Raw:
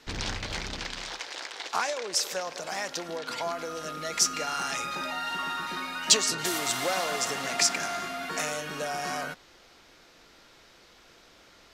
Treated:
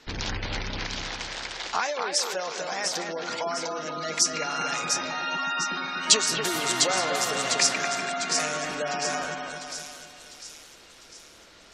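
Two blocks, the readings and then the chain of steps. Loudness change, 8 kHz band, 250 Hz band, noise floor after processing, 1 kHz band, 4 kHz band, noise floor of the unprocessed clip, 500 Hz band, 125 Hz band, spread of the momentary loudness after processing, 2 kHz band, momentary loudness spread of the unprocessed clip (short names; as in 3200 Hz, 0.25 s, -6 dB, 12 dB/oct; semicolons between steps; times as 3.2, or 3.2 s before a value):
+3.0 dB, +3.0 dB, +3.0 dB, -51 dBFS, +3.0 dB, +3.0 dB, -56 dBFS, +3.0 dB, +3.5 dB, 13 LU, +3.0 dB, 11 LU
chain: split-band echo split 3000 Hz, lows 0.244 s, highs 0.701 s, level -4.5 dB; spectral gate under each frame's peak -25 dB strong; gain +1.5 dB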